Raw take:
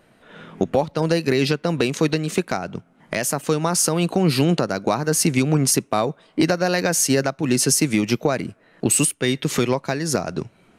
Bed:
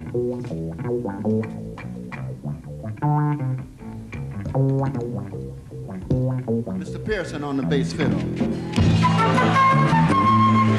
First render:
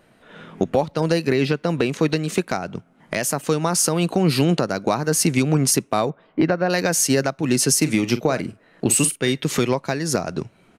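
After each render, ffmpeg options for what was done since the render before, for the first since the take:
-filter_complex "[0:a]asettb=1/sr,asplit=3[a][b][c];[a]atrim=end=1.264[d];[b]atrim=start=1.26:end=2.1,asetpts=PTS-STARTPTS,afade=t=in:d=0.004:c=qsin,afade=t=out:st=0.836:d=0.004:c=qsin,acrossover=split=3200[e][f];[f]acompressor=threshold=-35dB:ratio=4:attack=1:release=60[g];[e][g]amix=inputs=2:normalize=0[h];[c]atrim=start=2.096[i];[d][h]acrossfade=d=0.004:c1=hsin:c2=qsin[j];[j][i]acrossfade=d=0.004:c1=qsin:c2=hsin,asettb=1/sr,asplit=3[k][l][m];[k]atrim=end=6.104[n];[l]atrim=start=6.1:end=6.7,asetpts=PTS-STARTPTS,afade=t=in:d=0.004:c=qsin,afade=t=out:st=0.596:d=0.004:c=qsin,lowpass=2.1k[o];[m]atrim=start=6.696[p];[n][o]acrossfade=d=0.004:c1=hsin:c2=qsin[q];[q][p]acrossfade=d=0.004:c1=qsin:c2=hsin,asplit=3[r][s][t];[r]afade=t=out:st=7.81:d=0.02[u];[s]asplit=2[v][w];[w]adelay=45,volume=-13dB[x];[v][x]amix=inputs=2:normalize=0,afade=t=in:st=7.81:d=0.02,afade=t=out:st=9.31:d=0.02[y];[t]afade=t=in:st=9.31:d=0.02[z];[u][y][z]amix=inputs=3:normalize=0"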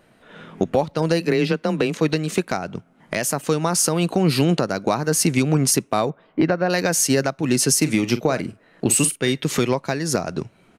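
-filter_complex "[0:a]asplit=3[a][b][c];[a]afade=t=out:st=1.2:d=0.02[d];[b]afreqshift=19,afade=t=in:st=1.2:d=0.02,afade=t=out:st=2:d=0.02[e];[c]afade=t=in:st=2:d=0.02[f];[d][e][f]amix=inputs=3:normalize=0"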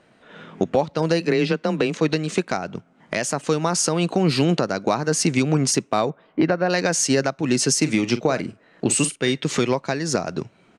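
-af "lowpass=f=8.2k:w=0.5412,lowpass=f=8.2k:w=1.3066,lowshelf=f=61:g=-12"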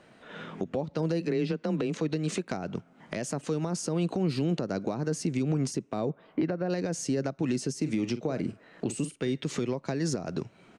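-filter_complex "[0:a]acrossover=split=510[a][b];[b]acompressor=threshold=-32dB:ratio=12[c];[a][c]amix=inputs=2:normalize=0,alimiter=limit=-19.5dB:level=0:latency=1:release=247"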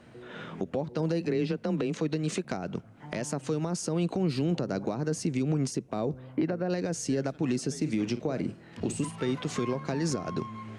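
-filter_complex "[1:a]volume=-24.5dB[a];[0:a][a]amix=inputs=2:normalize=0"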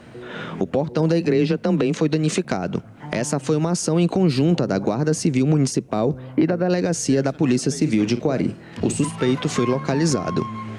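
-af "volume=10dB"

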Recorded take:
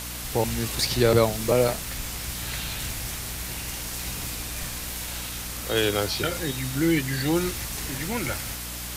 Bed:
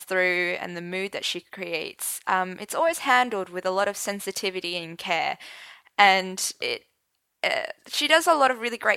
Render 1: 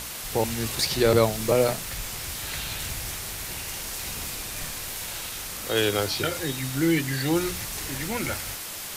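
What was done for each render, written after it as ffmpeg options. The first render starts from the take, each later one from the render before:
-af "bandreject=f=60:t=h:w=6,bandreject=f=120:t=h:w=6,bandreject=f=180:t=h:w=6,bandreject=f=240:t=h:w=6,bandreject=f=300:t=h:w=6"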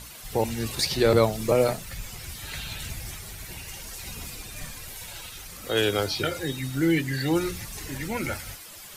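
-af "afftdn=nr=11:nf=-36"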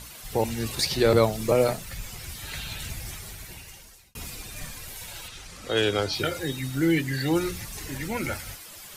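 -filter_complex "[0:a]asettb=1/sr,asplit=3[a][b][c];[a]atrim=end=5.284[d];[b]atrim=start=5.28:end=6.13,asetpts=PTS-STARTPTS,afade=t=in:d=0.004:c=qsin,afade=t=out:st=0.846:d=0.004:c=qsin,lowpass=7.7k[e];[c]atrim=start=6.126[f];[d][e]acrossfade=d=0.004:c1=hsin:c2=qsin[g];[g][f]acrossfade=d=0.004:c1=qsin:c2=hsin,asplit=2[h][i];[h]atrim=end=4.15,asetpts=PTS-STARTPTS,afade=t=out:st=3.26:d=0.89[j];[i]atrim=start=4.15,asetpts=PTS-STARTPTS,afade=t=in:d=0.004:c=hsin[k];[j][k]concat=n=2:v=0:a=1"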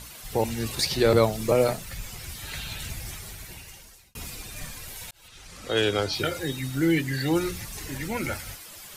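-filter_complex "[0:a]asplit=2[a][b];[a]atrim=end=5.11,asetpts=PTS-STARTPTS,afade=t=out:st=5.106:d=0.004:c=hsin[c];[b]atrim=start=5.11,asetpts=PTS-STARTPTS,afade=t=in:d=0.48[d];[c][d]concat=n=2:v=0:a=1"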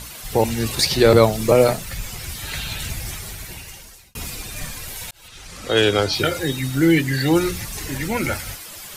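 -af "volume=7dB,alimiter=limit=-1dB:level=0:latency=1"

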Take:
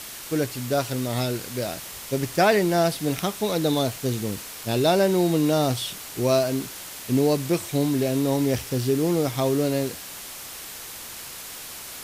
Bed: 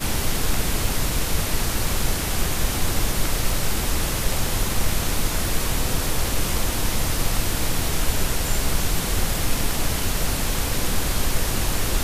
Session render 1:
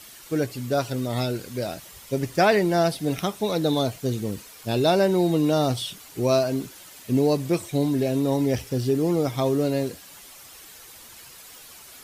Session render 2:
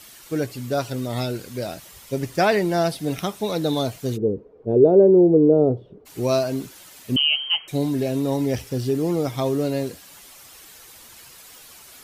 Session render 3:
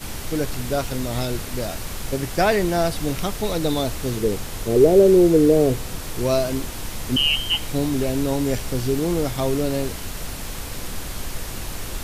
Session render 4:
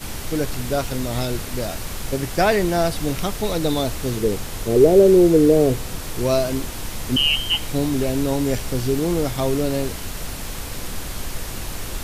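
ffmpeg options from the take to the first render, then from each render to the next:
-af "afftdn=nr=10:nf=-38"
-filter_complex "[0:a]asplit=3[a][b][c];[a]afade=t=out:st=4.16:d=0.02[d];[b]lowpass=f=440:t=q:w=5.1,afade=t=in:st=4.16:d=0.02,afade=t=out:st=6.05:d=0.02[e];[c]afade=t=in:st=6.05:d=0.02[f];[d][e][f]amix=inputs=3:normalize=0,asettb=1/sr,asplit=3[g][h][i];[g]atrim=end=7.164[j];[h]atrim=start=7.16:end=7.68,asetpts=PTS-STARTPTS,afade=t=in:d=0.004:c=qsin,afade=t=out:st=0.516:d=0.004:c=qsin,lowpass=f=2.8k:t=q:w=0.5098,lowpass=f=2.8k:t=q:w=0.6013,lowpass=f=2.8k:t=q:w=0.9,lowpass=f=2.8k:t=q:w=2.563,afreqshift=-3300[k];[i]atrim=start=7.676[l];[j][k]acrossfade=d=0.004:c1=hsin:c2=qsin[m];[m][l]acrossfade=d=0.004:c1=qsin:c2=hsin"
-filter_complex "[1:a]volume=-8dB[a];[0:a][a]amix=inputs=2:normalize=0"
-af "volume=1dB"

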